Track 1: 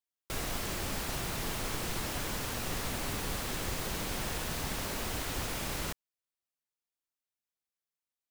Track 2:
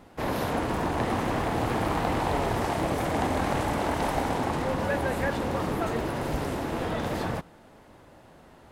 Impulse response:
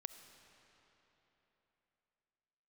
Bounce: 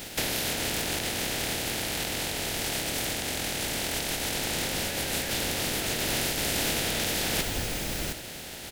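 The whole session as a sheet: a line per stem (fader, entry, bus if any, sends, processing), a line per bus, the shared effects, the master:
−5.0 dB, 2.20 s, send −5.5 dB, no processing
+1.5 dB, 0.00 s, send −0.5 dB, compressing power law on the bin magnitudes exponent 0.37; parametric band 3,500 Hz +3 dB 1.5 octaves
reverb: on, RT60 3.6 s, pre-delay 25 ms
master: parametric band 1,100 Hz −12 dB 0.61 octaves; compressor whose output falls as the input rises −30 dBFS, ratio −1

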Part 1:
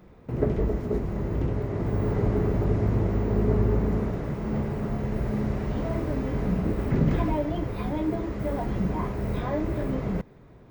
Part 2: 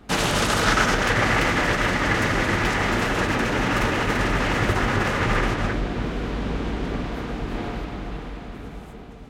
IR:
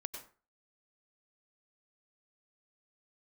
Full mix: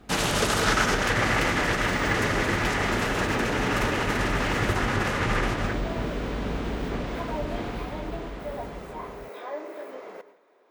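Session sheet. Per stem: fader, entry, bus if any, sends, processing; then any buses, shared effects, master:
−7.0 dB, 0.00 s, muted 0:04.76–0:05.42, send −3 dB, high-pass filter 420 Hz 24 dB per octave
−3.5 dB, 0.00 s, no send, high-shelf EQ 6,200 Hz +4 dB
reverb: on, RT60 0.40 s, pre-delay 87 ms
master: no processing

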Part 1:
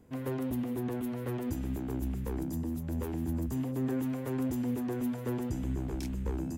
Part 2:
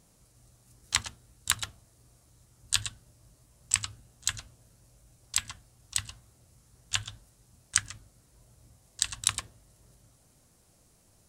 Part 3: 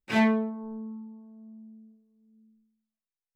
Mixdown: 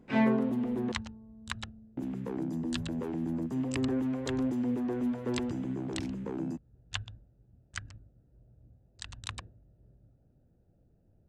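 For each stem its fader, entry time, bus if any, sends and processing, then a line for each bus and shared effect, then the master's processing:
+2.5 dB, 0.00 s, muted 0:00.92–0:01.97, no send, high-pass filter 140 Hz 24 dB per octave; high-shelf EQ 5,500 Hz +4.5 dB
+1.0 dB, 0.00 s, no send, adaptive Wiener filter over 41 samples; brickwall limiter −9 dBFS, peak gain reduction 7 dB
−2.5 dB, 0.00 s, no send, no processing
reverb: not used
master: head-to-tape spacing loss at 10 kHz 21 dB

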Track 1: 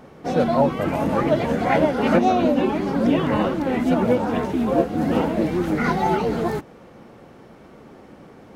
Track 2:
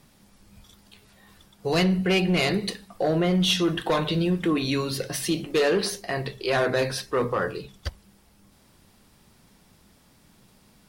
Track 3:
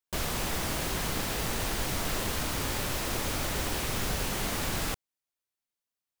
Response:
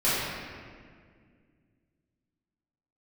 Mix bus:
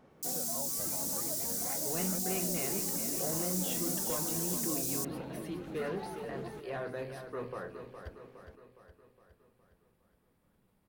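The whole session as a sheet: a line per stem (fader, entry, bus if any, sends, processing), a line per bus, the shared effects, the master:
−16.0 dB, 0.00 s, no send, no echo send, downward compressor, threshold −24 dBFS, peak gain reduction 11.5 dB
−15.0 dB, 0.20 s, no send, echo send −8.5 dB, parametric band 5,600 Hz −14 dB 1.7 octaves
+2.0 dB, 0.10 s, no send, no echo send, inverse Chebyshev high-pass filter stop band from 1,800 Hz, stop band 60 dB; comb filter 4 ms, depth 52%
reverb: not used
echo: repeating echo 413 ms, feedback 54%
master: no processing

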